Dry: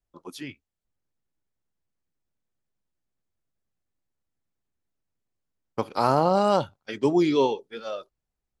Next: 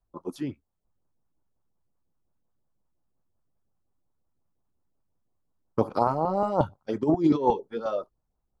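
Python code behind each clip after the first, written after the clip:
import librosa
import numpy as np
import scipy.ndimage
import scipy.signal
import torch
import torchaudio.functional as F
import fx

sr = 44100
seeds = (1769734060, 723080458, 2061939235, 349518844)

y = fx.high_shelf_res(x, sr, hz=1500.0, db=-12.0, q=1.5)
y = fx.over_compress(y, sr, threshold_db=-23.0, ratio=-0.5)
y = fx.filter_lfo_notch(y, sr, shape='saw_up', hz=5.6, low_hz=250.0, high_hz=4000.0, q=1.0)
y = y * librosa.db_to_amplitude(3.0)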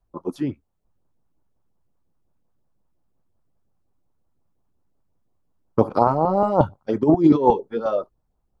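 y = fx.high_shelf(x, sr, hz=2200.0, db=-7.5)
y = y * librosa.db_to_amplitude(7.0)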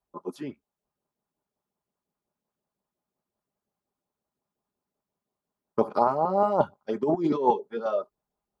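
y = fx.highpass(x, sr, hz=390.0, slope=6)
y = y + 0.39 * np.pad(y, (int(4.9 * sr / 1000.0), 0))[:len(y)]
y = y * librosa.db_to_amplitude(-4.0)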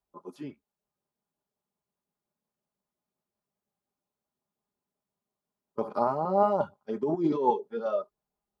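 y = fx.hpss(x, sr, part='percussive', gain_db=-9)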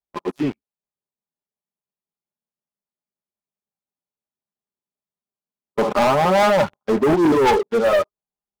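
y = fx.leveller(x, sr, passes=5)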